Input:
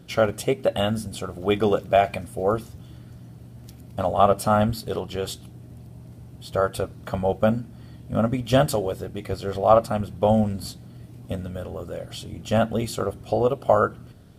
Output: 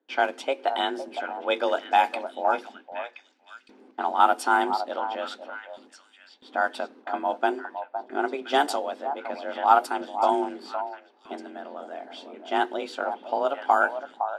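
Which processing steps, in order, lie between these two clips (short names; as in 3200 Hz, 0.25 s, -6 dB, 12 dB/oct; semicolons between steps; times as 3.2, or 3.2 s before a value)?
frequency shift +140 Hz; HPF 520 Hz 12 dB/oct; gate with hold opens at -41 dBFS; bell 660 Hz -4.5 dB 0.64 oct; low-pass opened by the level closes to 2000 Hz, open at -16 dBFS; on a send: delay with a stepping band-pass 0.511 s, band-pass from 790 Hz, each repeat 1.4 oct, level -7 dB; on the sum: gain +1 dB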